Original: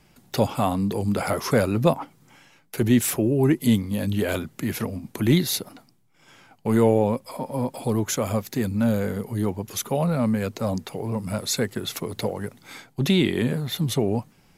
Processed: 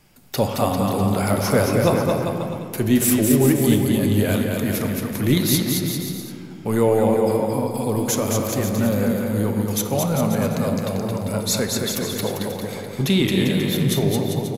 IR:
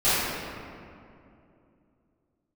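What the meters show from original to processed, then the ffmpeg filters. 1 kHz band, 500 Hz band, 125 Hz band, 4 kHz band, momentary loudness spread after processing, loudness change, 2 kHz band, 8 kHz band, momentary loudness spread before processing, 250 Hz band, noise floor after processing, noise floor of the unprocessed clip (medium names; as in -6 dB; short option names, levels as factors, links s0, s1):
+3.5 dB, +4.0 dB, +3.5 dB, +4.5 dB, 8 LU, +3.5 dB, +3.5 dB, +6.5 dB, 10 LU, +3.5 dB, -34 dBFS, -59 dBFS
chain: -filter_complex "[0:a]highshelf=f=8500:g=8.5,aecho=1:1:220|396|536.8|649.4|739.6:0.631|0.398|0.251|0.158|0.1,asplit=2[s0][s1];[1:a]atrim=start_sample=2205,lowpass=7900[s2];[s1][s2]afir=irnorm=-1:irlink=0,volume=0.0668[s3];[s0][s3]amix=inputs=2:normalize=0"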